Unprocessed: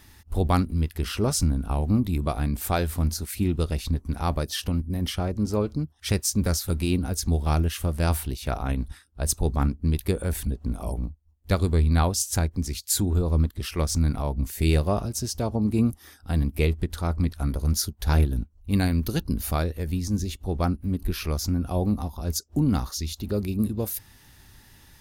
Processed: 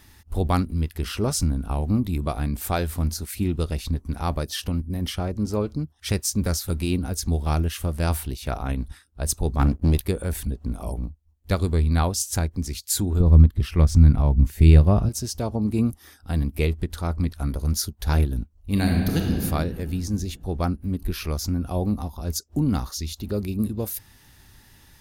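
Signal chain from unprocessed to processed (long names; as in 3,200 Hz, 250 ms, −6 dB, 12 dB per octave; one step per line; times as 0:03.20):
0:09.59–0:10.01: leveller curve on the samples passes 2
0:13.20–0:15.09: bass and treble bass +10 dB, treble −7 dB
0:18.56–0:19.36: thrown reverb, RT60 2.3 s, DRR 0 dB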